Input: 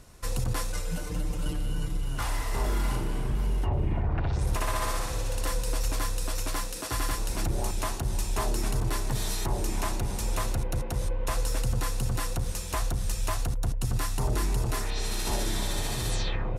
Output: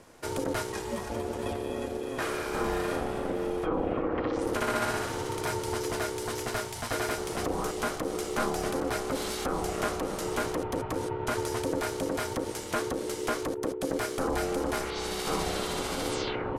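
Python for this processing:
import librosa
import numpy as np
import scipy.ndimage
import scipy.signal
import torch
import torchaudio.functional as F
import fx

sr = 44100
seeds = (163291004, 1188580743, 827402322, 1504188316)

y = fx.highpass(x, sr, hz=560.0, slope=6)
y = fx.tilt_eq(y, sr, slope=-2.5)
y = y * np.sin(2.0 * np.pi * 400.0 * np.arange(len(y)) / sr)
y = y * 10.0 ** (7.0 / 20.0)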